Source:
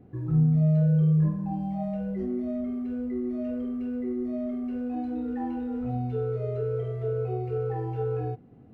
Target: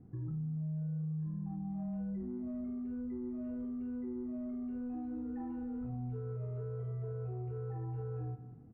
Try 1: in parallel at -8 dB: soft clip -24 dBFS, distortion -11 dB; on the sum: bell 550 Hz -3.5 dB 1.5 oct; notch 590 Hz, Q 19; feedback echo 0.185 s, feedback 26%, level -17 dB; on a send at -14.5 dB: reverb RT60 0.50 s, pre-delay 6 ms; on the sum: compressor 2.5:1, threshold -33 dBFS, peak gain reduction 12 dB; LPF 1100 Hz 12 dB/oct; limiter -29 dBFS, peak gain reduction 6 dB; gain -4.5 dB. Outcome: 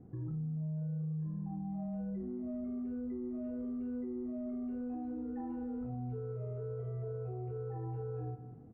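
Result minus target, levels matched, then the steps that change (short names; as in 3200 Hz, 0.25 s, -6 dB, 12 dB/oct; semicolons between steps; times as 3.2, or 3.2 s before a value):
soft clip: distortion -5 dB; 500 Hz band +3.0 dB
change: soft clip -30.5 dBFS, distortion -6 dB; change: bell 550 Hz -10.5 dB 1.5 oct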